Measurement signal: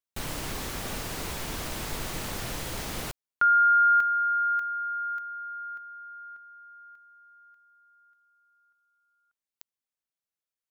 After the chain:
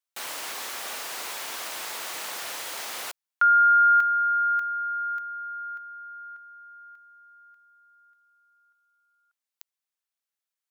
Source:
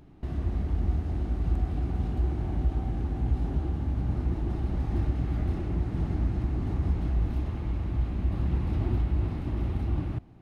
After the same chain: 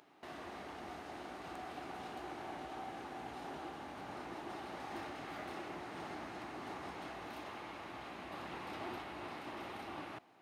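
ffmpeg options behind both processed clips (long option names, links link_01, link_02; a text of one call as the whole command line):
ffmpeg -i in.wav -af "highpass=710,volume=2.5dB" out.wav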